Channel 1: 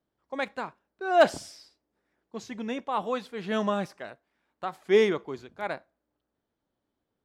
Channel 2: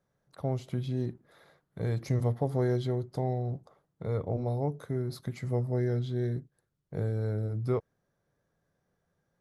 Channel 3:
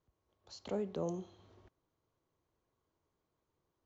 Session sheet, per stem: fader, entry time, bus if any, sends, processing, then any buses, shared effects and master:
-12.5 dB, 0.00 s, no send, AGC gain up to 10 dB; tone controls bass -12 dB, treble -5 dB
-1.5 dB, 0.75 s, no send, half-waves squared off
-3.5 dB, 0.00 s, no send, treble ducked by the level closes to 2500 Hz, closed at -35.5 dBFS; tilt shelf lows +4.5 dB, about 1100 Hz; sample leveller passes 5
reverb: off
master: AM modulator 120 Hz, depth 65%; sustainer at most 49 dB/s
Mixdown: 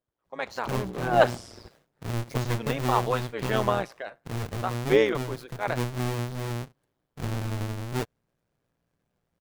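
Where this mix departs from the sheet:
stem 1 -12.5 dB -> -2.5 dB; stem 2: entry 0.75 s -> 0.25 s; master: missing sustainer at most 49 dB/s

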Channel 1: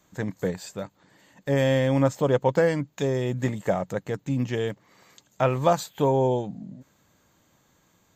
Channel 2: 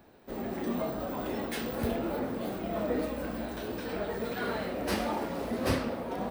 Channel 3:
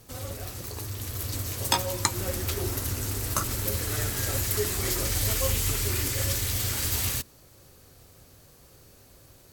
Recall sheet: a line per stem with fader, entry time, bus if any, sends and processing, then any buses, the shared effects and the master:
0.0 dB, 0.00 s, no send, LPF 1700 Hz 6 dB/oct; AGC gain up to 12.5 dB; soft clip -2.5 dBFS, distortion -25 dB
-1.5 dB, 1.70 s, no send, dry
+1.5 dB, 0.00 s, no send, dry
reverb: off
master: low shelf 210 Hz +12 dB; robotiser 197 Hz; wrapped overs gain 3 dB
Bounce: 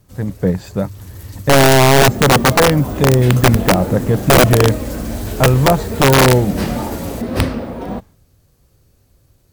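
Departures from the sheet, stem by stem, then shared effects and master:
stem 2 -1.5 dB -> +6.0 dB; stem 3 +1.5 dB -> -7.5 dB; master: missing robotiser 197 Hz

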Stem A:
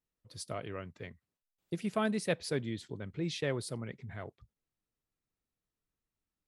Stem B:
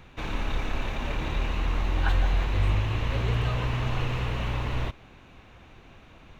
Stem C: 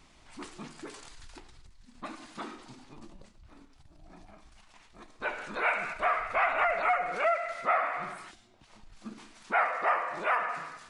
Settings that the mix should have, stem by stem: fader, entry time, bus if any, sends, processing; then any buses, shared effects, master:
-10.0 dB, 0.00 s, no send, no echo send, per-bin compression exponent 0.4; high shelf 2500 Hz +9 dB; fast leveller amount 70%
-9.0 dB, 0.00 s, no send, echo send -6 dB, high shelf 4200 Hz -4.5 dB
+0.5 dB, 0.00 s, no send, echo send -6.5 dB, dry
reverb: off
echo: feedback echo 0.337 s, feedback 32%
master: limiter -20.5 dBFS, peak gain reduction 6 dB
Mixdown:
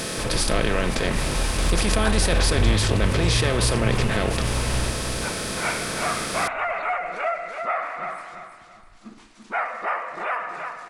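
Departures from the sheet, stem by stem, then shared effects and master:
stem A -10.0 dB -> +1.5 dB; stem B -9.0 dB -> +2.5 dB; master: missing limiter -20.5 dBFS, peak gain reduction 6 dB

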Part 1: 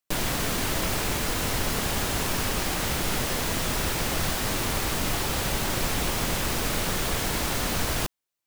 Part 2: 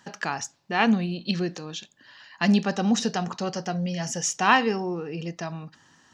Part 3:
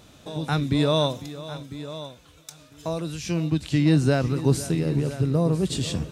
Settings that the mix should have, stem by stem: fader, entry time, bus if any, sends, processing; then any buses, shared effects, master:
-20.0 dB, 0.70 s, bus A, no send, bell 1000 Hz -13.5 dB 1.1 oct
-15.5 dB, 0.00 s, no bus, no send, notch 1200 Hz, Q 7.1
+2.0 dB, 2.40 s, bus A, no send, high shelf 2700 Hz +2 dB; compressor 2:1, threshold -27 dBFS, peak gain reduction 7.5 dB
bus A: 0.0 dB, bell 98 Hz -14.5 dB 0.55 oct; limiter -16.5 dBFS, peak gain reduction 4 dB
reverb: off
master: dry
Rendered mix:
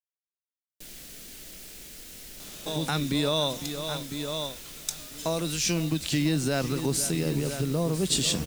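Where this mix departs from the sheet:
stem 2: muted; master: extra high shelf 3100 Hz +8 dB

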